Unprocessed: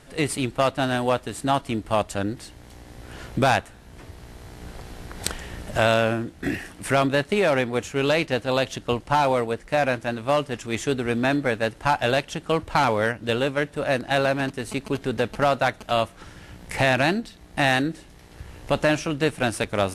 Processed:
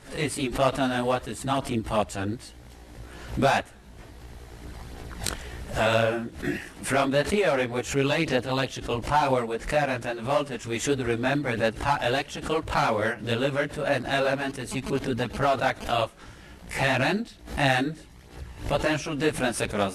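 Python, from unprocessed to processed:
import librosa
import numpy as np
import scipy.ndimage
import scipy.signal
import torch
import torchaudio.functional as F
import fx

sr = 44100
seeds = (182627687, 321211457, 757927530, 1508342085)

y = fx.chorus_voices(x, sr, voices=2, hz=1.5, base_ms=17, depth_ms=3.0, mix_pct=60)
y = fx.pre_swell(y, sr, db_per_s=130.0)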